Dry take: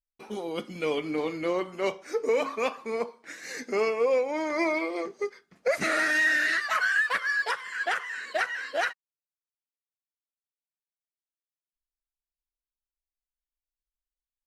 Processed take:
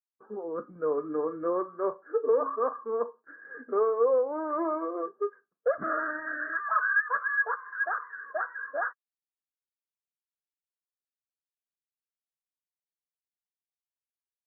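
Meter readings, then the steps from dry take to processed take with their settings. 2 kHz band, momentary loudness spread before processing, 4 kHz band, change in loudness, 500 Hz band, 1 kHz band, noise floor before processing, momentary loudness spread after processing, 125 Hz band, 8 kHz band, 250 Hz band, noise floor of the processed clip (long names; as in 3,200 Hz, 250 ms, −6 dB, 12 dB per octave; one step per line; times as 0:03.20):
−4.5 dB, 11 LU, below −40 dB, −2.0 dB, 0.0 dB, +1.0 dB, below −85 dBFS, 11 LU, can't be measured, below −35 dB, −3.5 dB, below −85 dBFS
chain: noise gate with hold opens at −41 dBFS
Chebyshev low-pass with heavy ripple 1,700 Hz, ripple 9 dB
noise reduction from a noise print of the clip's start 9 dB
parametric band 1,100 Hz +6.5 dB 1.4 octaves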